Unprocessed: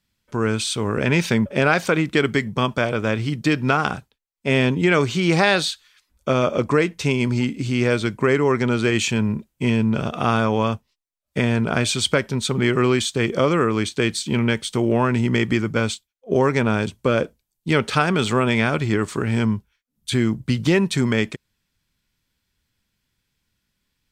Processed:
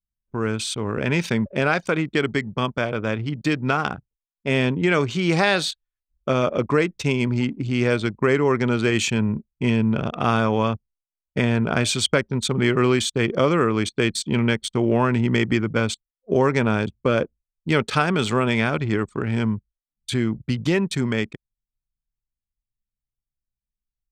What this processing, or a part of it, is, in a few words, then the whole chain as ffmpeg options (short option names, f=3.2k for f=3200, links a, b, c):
voice memo with heavy noise removal: -af "anlmdn=63.1,dynaudnorm=f=550:g=21:m=4.5dB,volume=-3dB"